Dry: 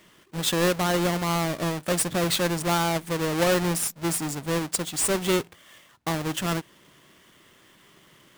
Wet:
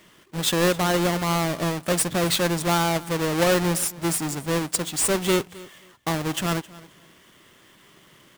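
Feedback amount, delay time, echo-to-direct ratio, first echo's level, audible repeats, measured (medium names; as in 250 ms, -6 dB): 20%, 265 ms, -20.5 dB, -20.5 dB, 2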